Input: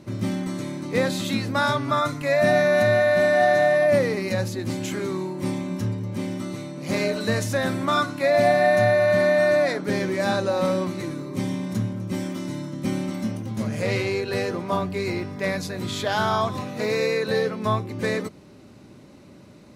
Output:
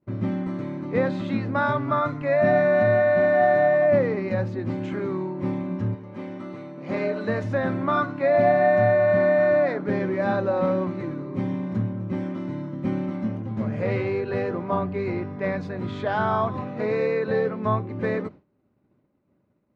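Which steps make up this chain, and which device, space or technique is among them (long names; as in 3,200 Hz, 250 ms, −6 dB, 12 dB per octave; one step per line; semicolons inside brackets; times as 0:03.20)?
hearing-loss simulation (low-pass filter 1,700 Hz 12 dB per octave; downward expander −34 dBFS)
0:05.94–0:07.43: high-pass filter 590 Hz → 150 Hz 6 dB per octave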